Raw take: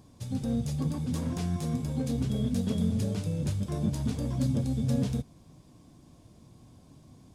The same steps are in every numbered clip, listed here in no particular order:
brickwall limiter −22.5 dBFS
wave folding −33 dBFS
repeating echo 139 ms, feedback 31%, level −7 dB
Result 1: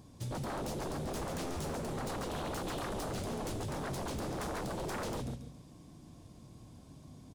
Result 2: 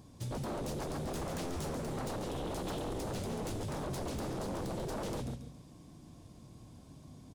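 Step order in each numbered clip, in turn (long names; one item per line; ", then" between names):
repeating echo, then wave folding, then brickwall limiter
repeating echo, then brickwall limiter, then wave folding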